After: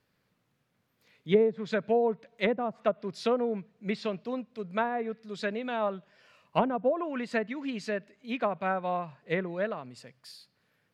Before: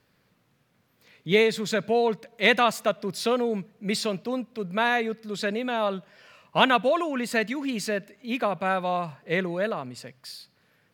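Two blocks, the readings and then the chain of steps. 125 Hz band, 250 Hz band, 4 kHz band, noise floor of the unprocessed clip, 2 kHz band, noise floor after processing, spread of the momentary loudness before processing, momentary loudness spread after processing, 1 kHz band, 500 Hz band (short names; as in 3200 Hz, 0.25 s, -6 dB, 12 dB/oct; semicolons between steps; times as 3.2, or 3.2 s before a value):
-4.5 dB, -4.0 dB, -13.0 dB, -68 dBFS, -10.0 dB, -75 dBFS, 11 LU, 10 LU, -6.0 dB, -3.5 dB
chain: treble ducked by the level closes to 590 Hz, closed at -17.5 dBFS; upward expander 1.5:1, over -33 dBFS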